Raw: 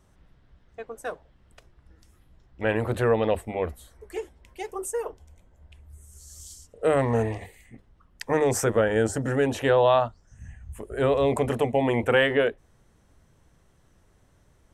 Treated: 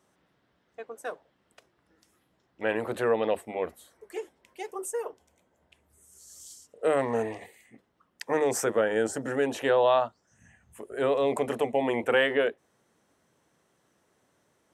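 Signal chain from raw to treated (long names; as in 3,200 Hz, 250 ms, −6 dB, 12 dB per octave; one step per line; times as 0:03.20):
high-pass filter 240 Hz 12 dB per octave
level −2.5 dB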